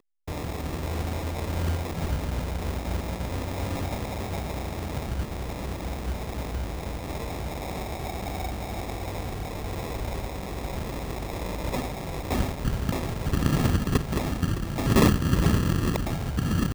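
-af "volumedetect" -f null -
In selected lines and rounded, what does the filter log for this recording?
mean_volume: -27.9 dB
max_volume: -8.9 dB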